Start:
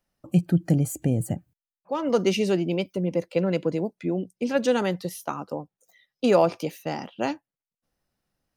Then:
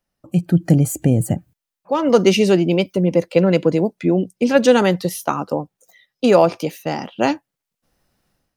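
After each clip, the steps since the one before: AGC gain up to 12.5 dB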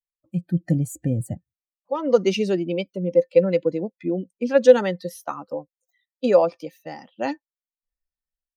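per-bin expansion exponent 1.5; high shelf 11000 Hz -9.5 dB; small resonant body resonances 520/1800 Hz, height 12 dB, ringing for 80 ms; gain -6 dB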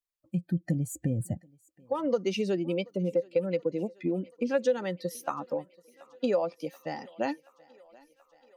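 compressor 3:1, threshold -27 dBFS, peak gain reduction 15.5 dB; thinning echo 0.73 s, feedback 75%, high-pass 340 Hz, level -24 dB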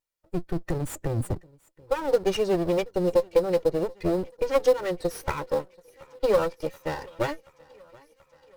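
minimum comb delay 2.1 ms; in parallel at -11.5 dB: sample-rate reducer 4600 Hz, jitter 20%; on the sum: wow and flutter 23 cents; gain +4 dB

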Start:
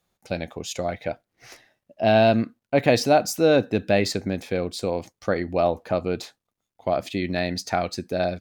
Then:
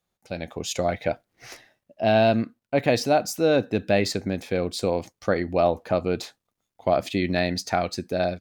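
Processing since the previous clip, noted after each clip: AGC gain up to 11.5 dB; gain -6.5 dB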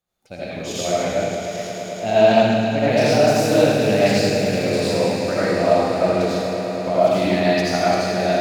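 swelling echo 0.108 s, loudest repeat 5, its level -14 dB; digital reverb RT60 1.6 s, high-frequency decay 1×, pre-delay 40 ms, DRR -9 dB; Doppler distortion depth 0.12 ms; gain -4.5 dB

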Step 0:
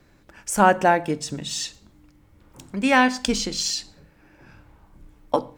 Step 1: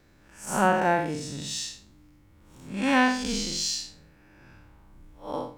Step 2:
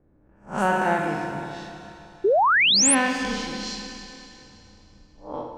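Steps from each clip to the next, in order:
time blur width 0.152 s; bell 570 Hz -2 dB 2 oct
low-pass opened by the level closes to 670 Hz, open at -20 dBFS; Schroeder reverb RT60 2.9 s, combs from 26 ms, DRR 2.5 dB; painted sound rise, 2.24–2.95, 360–11000 Hz -17 dBFS; gain -1 dB

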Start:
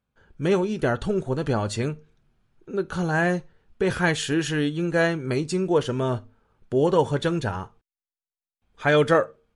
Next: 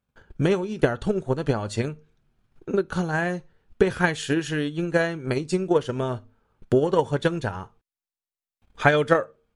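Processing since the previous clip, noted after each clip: in parallel at -2 dB: compressor, threshold -28 dBFS, peak gain reduction 13.5 dB; on the sum: transient shaper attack +11 dB, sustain -1 dB; gain -6.5 dB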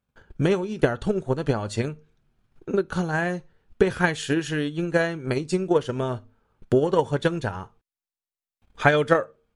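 nothing audible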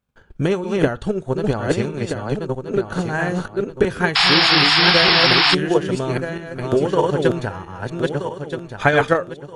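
regenerating reverse delay 0.638 s, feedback 49%, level -2 dB; painted sound noise, 4.15–5.55, 680–5500 Hz -17 dBFS; gain +2 dB

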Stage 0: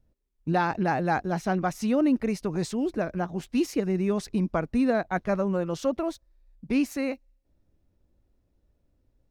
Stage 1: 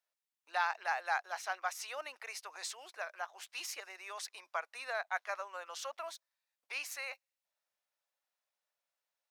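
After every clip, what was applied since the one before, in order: Bessel high-pass 1200 Hz, order 6; gain -1.5 dB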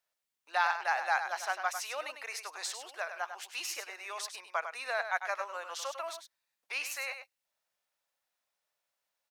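echo 0.1 s -8.5 dB; gain +4 dB

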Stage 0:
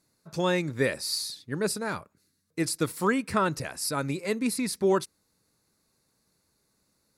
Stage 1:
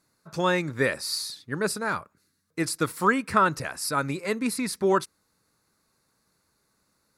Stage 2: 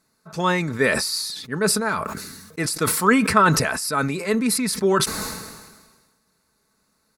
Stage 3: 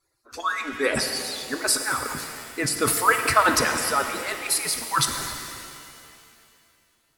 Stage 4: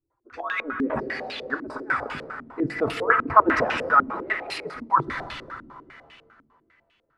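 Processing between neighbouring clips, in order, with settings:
bell 1300 Hz +7 dB 1.2 oct
comb 4.6 ms, depth 39%; sustainer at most 41 dB/s; gain +2.5 dB
median-filter separation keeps percussive; shimmer reverb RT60 2.5 s, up +7 st, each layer -8 dB, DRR 5.5 dB
stepped low-pass 10 Hz 260–2800 Hz; gain -3 dB

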